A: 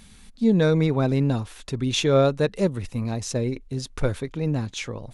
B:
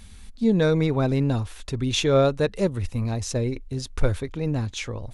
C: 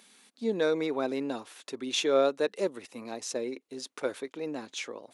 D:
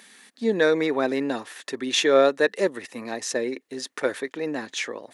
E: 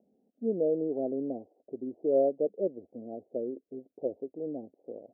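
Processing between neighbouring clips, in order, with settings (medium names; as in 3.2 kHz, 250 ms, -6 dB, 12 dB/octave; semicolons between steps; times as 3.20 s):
resonant low shelf 110 Hz +6.5 dB, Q 1.5
high-pass 280 Hz 24 dB/octave; trim -4.5 dB
peaking EQ 1.8 kHz +12.5 dB 0.26 oct; trim +6.5 dB
steep low-pass 710 Hz 72 dB/octave; trim -7 dB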